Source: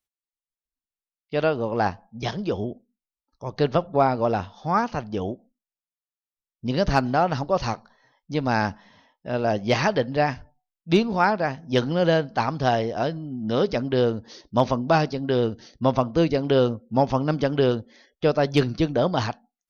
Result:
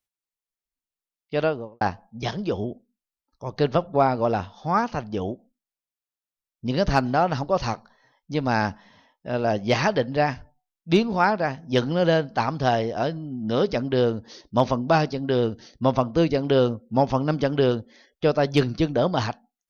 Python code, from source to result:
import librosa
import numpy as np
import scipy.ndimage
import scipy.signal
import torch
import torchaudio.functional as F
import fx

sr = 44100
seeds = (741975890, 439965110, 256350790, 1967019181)

y = fx.studio_fade_out(x, sr, start_s=1.39, length_s=0.42)